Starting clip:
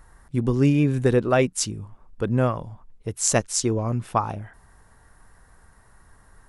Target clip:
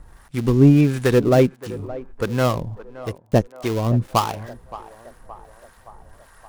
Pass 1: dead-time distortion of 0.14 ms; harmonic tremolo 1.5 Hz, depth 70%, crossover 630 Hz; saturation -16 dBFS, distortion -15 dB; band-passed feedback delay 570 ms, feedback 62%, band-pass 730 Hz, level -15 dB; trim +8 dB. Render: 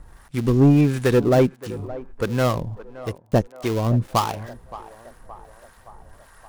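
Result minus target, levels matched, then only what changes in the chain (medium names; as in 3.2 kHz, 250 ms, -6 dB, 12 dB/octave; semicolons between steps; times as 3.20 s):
saturation: distortion +10 dB
change: saturation -9 dBFS, distortion -25 dB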